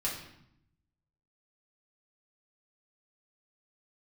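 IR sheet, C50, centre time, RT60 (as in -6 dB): 5.0 dB, 36 ms, 0.75 s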